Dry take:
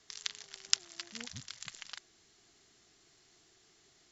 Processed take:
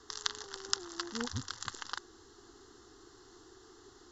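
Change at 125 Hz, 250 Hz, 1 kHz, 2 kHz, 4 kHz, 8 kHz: +9.5 dB, +11.5 dB, +11.5 dB, +3.0 dB, −0.5 dB, can't be measured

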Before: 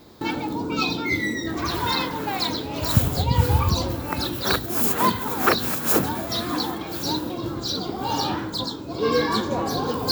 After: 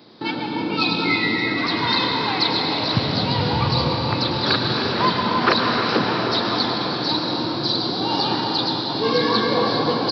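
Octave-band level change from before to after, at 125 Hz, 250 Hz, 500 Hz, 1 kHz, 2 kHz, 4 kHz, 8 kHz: 0.0 dB, +3.5 dB, +3.5 dB, +4.0 dB, +5.0 dB, +7.5 dB, below −10 dB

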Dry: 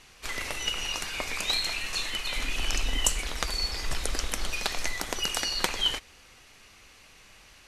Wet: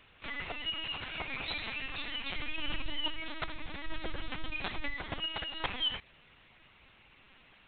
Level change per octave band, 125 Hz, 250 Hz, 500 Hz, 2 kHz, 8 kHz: −7.5 dB, −2.5 dB, −7.0 dB, −5.5 dB, below −40 dB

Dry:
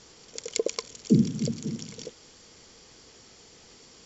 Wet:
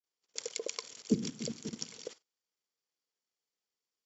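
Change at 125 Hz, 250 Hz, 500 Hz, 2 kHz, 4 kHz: −14.5, −10.5, −9.0, −5.0, −4.5 decibels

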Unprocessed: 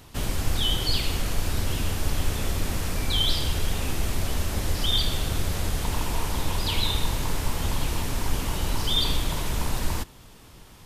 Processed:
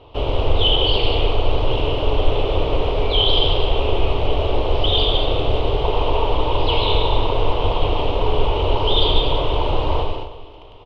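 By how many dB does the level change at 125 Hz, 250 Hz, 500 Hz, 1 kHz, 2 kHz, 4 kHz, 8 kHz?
+5.5 dB, +5.5 dB, +17.0 dB, +12.0 dB, +3.5 dB, +7.0 dB, below −20 dB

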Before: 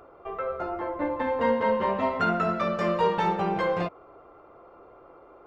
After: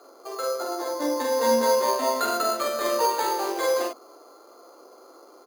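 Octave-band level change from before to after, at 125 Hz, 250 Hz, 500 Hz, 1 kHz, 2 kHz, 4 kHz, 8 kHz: below −20 dB, −2.0 dB, +3.0 dB, +1.0 dB, −0.5 dB, +10.5 dB, can't be measured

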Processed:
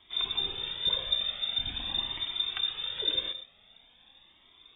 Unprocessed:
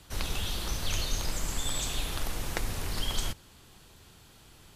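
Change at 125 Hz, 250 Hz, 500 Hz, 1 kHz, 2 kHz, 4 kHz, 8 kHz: −14.0 dB, −9.0 dB, −4.0 dB, −6.0 dB, −3.5 dB, +9.0 dB, below −40 dB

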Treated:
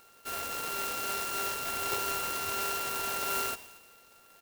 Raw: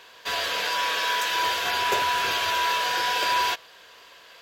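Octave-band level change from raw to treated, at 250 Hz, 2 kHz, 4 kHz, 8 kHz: −2.5, −12.0, −13.0, −1.5 decibels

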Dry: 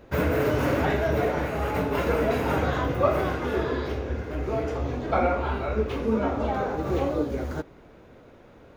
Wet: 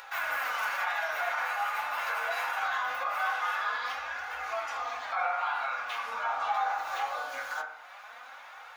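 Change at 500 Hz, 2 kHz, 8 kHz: −16.5 dB, +3.0 dB, can't be measured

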